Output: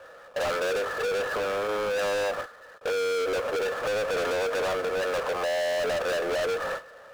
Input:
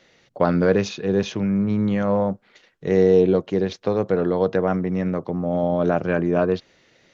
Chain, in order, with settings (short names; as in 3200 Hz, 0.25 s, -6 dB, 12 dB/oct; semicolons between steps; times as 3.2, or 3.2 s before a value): delta modulation 64 kbps, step -35 dBFS; elliptic high-pass 530 Hz, stop band 80 dB; gate with hold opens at -31 dBFS; sample leveller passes 3; compressor, threshold -22 dBFS, peak gain reduction 8.5 dB; rippled Chebyshev low-pass 1800 Hz, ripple 9 dB; power-law curve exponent 0.5; hard clip -26 dBFS, distortion -10 dB